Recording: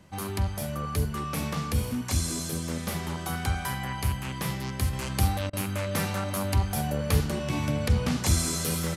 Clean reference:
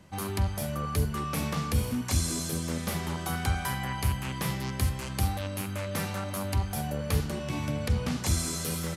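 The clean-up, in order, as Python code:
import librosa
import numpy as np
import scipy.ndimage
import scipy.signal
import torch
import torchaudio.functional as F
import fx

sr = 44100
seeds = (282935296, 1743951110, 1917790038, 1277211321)

y = fx.fix_interpolate(x, sr, at_s=(5.5,), length_ms=30.0)
y = fx.gain(y, sr, db=fx.steps((0.0, 0.0), (4.93, -3.5)))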